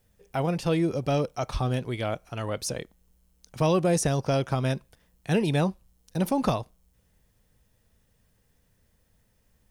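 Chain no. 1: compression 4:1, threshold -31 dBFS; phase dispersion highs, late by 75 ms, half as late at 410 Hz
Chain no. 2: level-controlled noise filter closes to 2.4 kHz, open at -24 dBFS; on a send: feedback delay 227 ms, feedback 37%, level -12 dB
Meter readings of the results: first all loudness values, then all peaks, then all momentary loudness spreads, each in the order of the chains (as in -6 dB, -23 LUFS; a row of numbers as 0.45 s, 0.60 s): -35.0 LUFS, -27.5 LUFS; -20.5 dBFS, -12.0 dBFS; 10 LU, 14 LU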